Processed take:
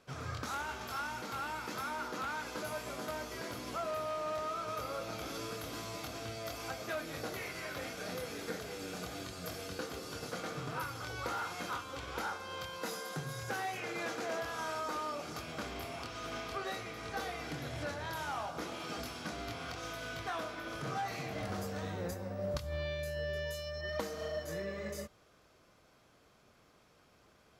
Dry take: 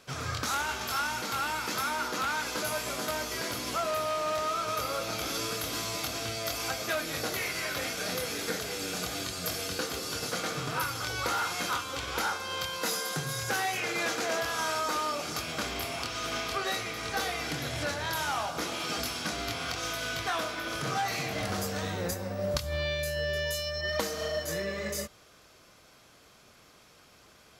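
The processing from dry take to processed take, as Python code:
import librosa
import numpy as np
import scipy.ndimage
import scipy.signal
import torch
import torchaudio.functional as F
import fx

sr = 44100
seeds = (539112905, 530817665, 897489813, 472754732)

y = fx.high_shelf(x, sr, hz=2000.0, db=-8.5)
y = F.gain(torch.from_numpy(y), -5.0).numpy()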